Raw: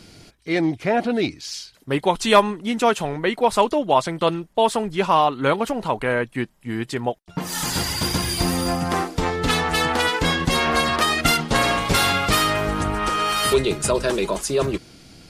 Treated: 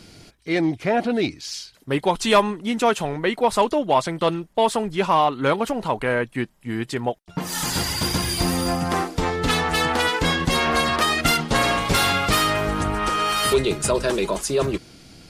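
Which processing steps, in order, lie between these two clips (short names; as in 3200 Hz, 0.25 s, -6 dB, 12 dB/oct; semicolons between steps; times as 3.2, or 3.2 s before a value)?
soft clip -6.5 dBFS, distortion -22 dB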